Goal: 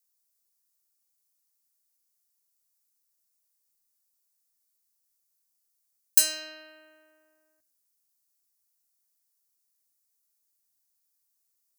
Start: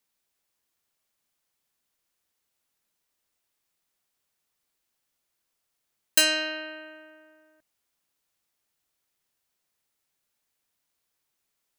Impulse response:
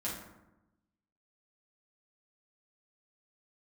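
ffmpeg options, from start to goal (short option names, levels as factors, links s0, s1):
-filter_complex "[0:a]aexciter=amount=6.6:drive=1.4:freq=4500,asplit=2[s0][s1];[1:a]atrim=start_sample=2205[s2];[s1][s2]afir=irnorm=-1:irlink=0,volume=0.106[s3];[s0][s3]amix=inputs=2:normalize=0,volume=0.224"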